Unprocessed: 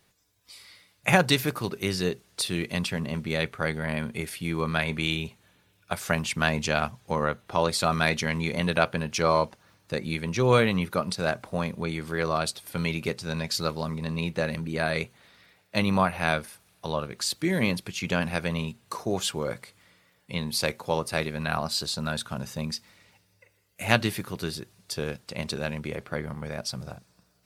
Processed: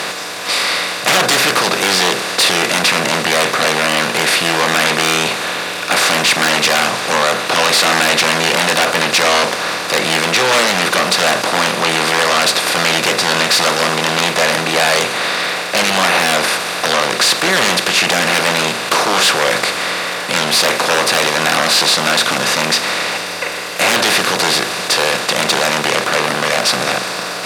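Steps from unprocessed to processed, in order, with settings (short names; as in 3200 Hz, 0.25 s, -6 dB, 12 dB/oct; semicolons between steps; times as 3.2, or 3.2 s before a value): per-bin compression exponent 0.4; sine folder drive 19 dB, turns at 3 dBFS; weighting filter A; gain -10 dB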